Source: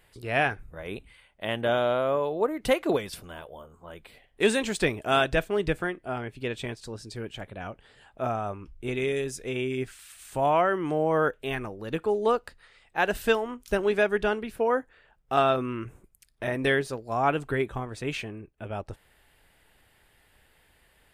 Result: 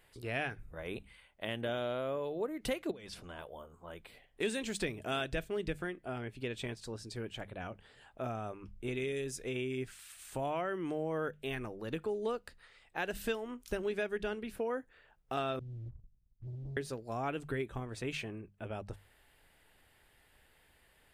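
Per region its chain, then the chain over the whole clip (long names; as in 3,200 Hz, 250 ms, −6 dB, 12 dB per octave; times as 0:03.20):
0:02.91–0:03.39: low-pass filter 7,500 Hz + downward compressor 8 to 1, threshold −37 dBFS
0:15.59–0:16.77: inverse Chebyshev low-pass filter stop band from 540 Hz, stop band 70 dB + leveller curve on the samples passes 2
whole clip: mains-hum notches 50/100/150/200 Hz; dynamic equaliser 940 Hz, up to −7 dB, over −39 dBFS, Q 0.92; downward compressor 2 to 1, threshold −31 dBFS; level −4 dB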